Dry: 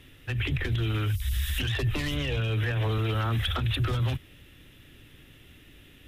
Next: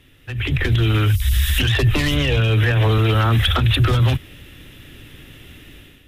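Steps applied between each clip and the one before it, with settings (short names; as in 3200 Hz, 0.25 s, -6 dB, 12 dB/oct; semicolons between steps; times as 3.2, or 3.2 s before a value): AGC gain up to 11 dB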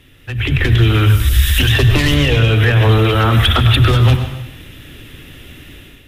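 plate-style reverb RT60 0.92 s, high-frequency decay 0.95×, pre-delay 85 ms, DRR 7.5 dB; gain +4.5 dB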